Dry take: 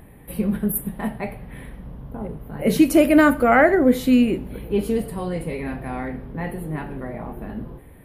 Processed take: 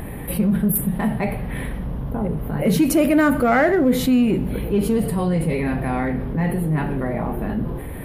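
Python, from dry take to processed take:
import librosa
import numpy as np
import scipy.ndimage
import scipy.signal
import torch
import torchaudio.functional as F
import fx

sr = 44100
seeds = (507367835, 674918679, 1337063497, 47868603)

p1 = fx.dynamic_eq(x, sr, hz=160.0, q=1.6, threshold_db=-36.0, ratio=4.0, max_db=7)
p2 = np.clip(p1, -10.0 ** (-20.0 / 20.0), 10.0 ** (-20.0 / 20.0))
p3 = p1 + F.gain(torch.from_numpy(p2), -9.0).numpy()
p4 = fx.env_flatten(p3, sr, amount_pct=50)
y = F.gain(torch.from_numpy(p4), -5.5).numpy()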